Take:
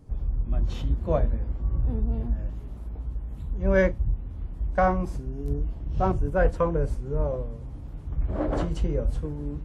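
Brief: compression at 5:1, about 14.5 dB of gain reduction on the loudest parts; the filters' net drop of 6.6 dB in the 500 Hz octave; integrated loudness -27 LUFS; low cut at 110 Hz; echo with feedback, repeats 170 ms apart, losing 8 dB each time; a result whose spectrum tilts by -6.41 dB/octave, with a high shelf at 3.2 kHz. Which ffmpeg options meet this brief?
-af "highpass=110,equalizer=f=500:t=o:g=-7.5,highshelf=f=3200:g=-7.5,acompressor=threshold=0.0126:ratio=5,aecho=1:1:170|340|510|680|850:0.398|0.159|0.0637|0.0255|0.0102,volume=5.96"

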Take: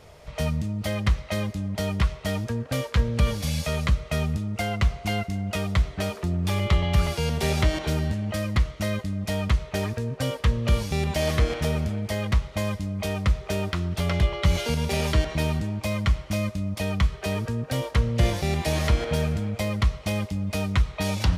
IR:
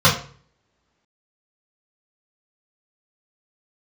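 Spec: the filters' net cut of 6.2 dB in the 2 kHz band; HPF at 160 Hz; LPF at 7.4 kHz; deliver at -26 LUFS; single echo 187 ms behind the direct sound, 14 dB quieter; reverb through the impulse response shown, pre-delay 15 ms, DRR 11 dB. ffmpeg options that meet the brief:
-filter_complex "[0:a]highpass=160,lowpass=7400,equalizer=f=2000:t=o:g=-7.5,aecho=1:1:187:0.2,asplit=2[s0][s1];[1:a]atrim=start_sample=2205,adelay=15[s2];[s1][s2]afir=irnorm=-1:irlink=0,volume=0.02[s3];[s0][s3]amix=inputs=2:normalize=0,volume=1.33"

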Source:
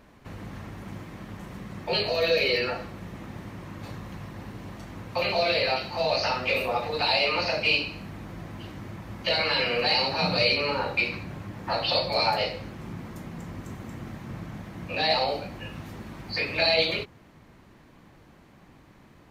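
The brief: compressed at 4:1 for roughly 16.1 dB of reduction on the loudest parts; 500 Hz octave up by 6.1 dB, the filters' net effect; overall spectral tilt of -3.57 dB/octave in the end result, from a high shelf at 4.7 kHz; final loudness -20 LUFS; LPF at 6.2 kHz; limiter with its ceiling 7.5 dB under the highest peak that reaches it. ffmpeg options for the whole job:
-af "lowpass=6200,equalizer=f=500:t=o:g=7,highshelf=f=4700:g=7.5,acompressor=threshold=0.02:ratio=4,volume=7.94,alimiter=limit=0.316:level=0:latency=1"

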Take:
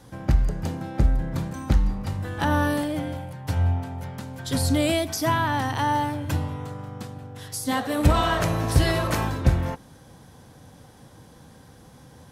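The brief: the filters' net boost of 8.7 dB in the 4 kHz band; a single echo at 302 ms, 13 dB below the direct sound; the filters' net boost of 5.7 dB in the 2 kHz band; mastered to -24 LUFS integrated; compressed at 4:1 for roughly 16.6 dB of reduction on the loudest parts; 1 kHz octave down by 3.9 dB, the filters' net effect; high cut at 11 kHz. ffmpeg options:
-af "lowpass=11000,equalizer=f=1000:t=o:g=-7,equalizer=f=2000:t=o:g=7.5,equalizer=f=4000:t=o:g=9,acompressor=threshold=0.02:ratio=4,aecho=1:1:302:0.224,volume=3.76"

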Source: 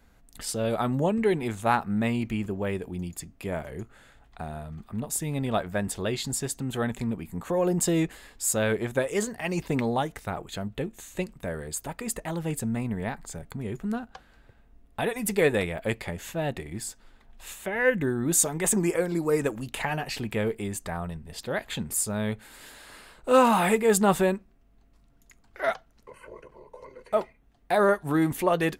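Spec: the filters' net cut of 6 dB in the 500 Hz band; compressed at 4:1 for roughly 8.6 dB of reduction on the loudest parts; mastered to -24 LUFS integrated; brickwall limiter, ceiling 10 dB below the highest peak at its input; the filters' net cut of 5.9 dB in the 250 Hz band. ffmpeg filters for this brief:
-af "equalizer=f=250:t=o:g=-6.5,equalizer=f=500:t=o:g=-5.5,acompressor=threshold=0.0398:ratio=4,volume=4.22,alimiter=limit=0.224:level=0:latency=1"

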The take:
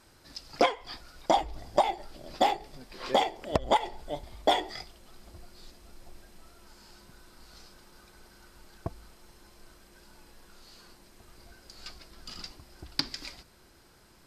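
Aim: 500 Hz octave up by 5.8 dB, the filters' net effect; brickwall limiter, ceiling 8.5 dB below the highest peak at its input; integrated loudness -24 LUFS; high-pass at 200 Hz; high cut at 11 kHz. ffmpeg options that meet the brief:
-af "highpass=200,lowpass=11000,equalizer=f=500:t=o:g=7.5,volume=2.24,alimiter=limit=0.447:level=0:latency=1"

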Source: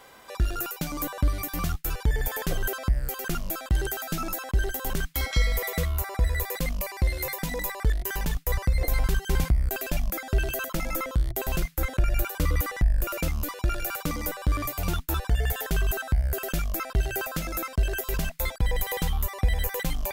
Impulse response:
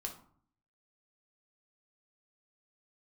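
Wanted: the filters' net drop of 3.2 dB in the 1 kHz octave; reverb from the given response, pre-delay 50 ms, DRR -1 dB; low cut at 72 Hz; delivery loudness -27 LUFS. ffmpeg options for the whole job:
-filter_complex "[0:a]highpass=72,equalizer=f=1000:t=o:g=-4.5,asplit=2[s0][s1];[1:a]atrim=start_sample=2205,adelay=50[s2];[s1][s2]afir=irnorm=-1:irlink=0,volume=1.33[s3];[s0][s3]amix=inputs=2:normalize=0,volume=1.06"

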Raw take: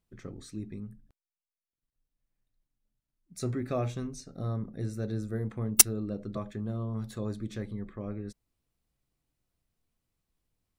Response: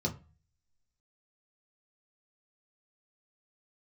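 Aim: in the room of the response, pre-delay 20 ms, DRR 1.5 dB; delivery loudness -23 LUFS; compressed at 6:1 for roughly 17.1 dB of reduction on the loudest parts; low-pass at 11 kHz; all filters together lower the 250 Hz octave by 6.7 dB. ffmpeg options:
-filter_complex "[0:a]lowpass=11000,equalizer=f=250:t=o:g=-8.5,acompressor=threshold=0.0178:ratio=6,asplit=2[s0][s1];[1:a]atrim=start_sample=2205,adelay=20[s2];[s1][s2]afir=irnorm=-1:irlink=0,volume=0.501[s3];[s0][s3]amix=inputs=2:normalize=0,volume=2.99"

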